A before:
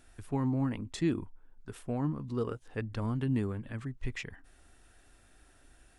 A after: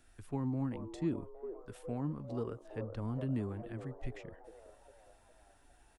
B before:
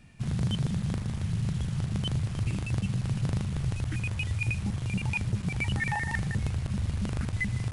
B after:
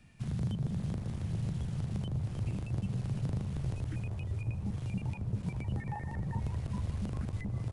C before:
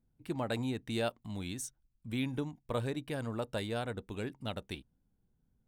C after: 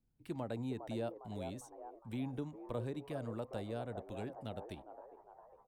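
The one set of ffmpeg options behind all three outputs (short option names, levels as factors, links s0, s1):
-filter_complex "[0:a]acrossover=split=280|910[s0][s1][s2];[s1]asplit=8[s3][s4][s5][s6][s7][s8][s9][s10];[s4]adelay=406,afreqshift=78,volume=0.596[s11];[s5]adelay=812,afreqshift=156,volume=0.32[s12];[s6]adelay=1218,afreqshift=234,volume=0.174[s13];[s7]adelay=1624,afreqshift=312,volume=0.0933[s14];[s8]adelay=2030,afreqshift=390,volume=0.0507[s15];[s9]adelay=2436,afreqshift=468,volume=0.0272[s16];[s10]adelay=2842,afreqshift=546,volume=0.0148[s17];[s3][s11][s12][s13][s14][s15][s16][s17]amix=inputs=8:normalize=0[s18];[s2]acompressor=threshold=0.00355:ratio=6[s19];[s0][s18][s19]amix=inputs=3:normalize=0,volume=0.562"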